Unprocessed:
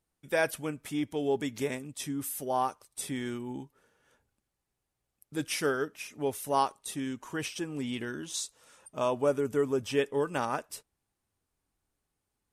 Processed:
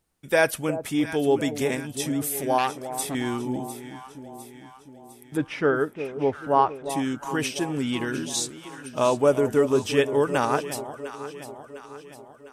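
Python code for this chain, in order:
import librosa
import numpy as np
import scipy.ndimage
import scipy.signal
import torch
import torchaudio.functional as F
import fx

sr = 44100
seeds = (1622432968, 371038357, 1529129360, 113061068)

y = fx.lowpass(x, sr, hz=1800.0, slope=12, at=(5.36, 6.89), fade=0.02)
y = fx.echo_alternate(y, sr, ms=352, hz=860.0, feedback_pct=71, wet_db=-10.0)
y = fx.transformer_sat(y, sr, knee_hz=1700.0, at=(2.58, 3.15))
y = y * 10.0 ** (7.5 / 20.0)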